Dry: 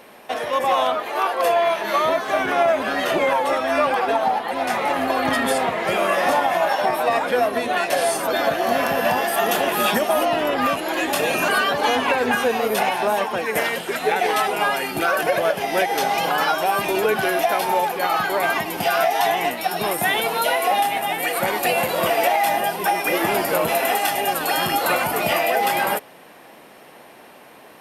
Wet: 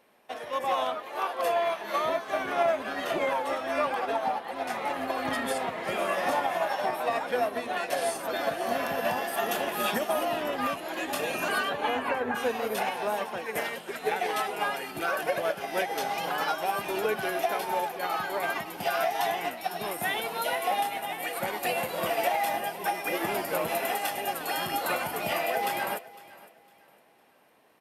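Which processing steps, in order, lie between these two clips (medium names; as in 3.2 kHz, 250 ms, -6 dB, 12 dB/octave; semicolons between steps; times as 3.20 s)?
11.63–12.34 s: low-pass 4.4 kHz -> 1.8 kHz 24 dB/octave; on a send: feedback delay 506 ms, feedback 38%, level -13.5 dB; on the sum: upward expansion 1.5:1, over -37 dBFS; trim -7 dB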